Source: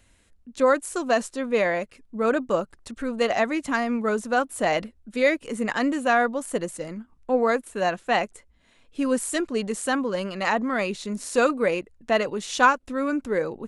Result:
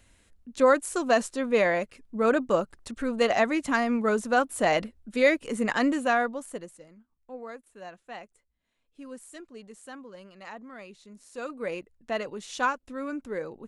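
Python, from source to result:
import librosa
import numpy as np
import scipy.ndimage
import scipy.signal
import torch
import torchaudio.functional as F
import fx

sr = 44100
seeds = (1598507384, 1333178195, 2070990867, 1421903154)

y = fx.gain(x, sr, db=fx.line((5.9, -0.5), (6.46, -8.0), (6.9, -19.0), (11.32, -19.0), (11.72, -8.5)))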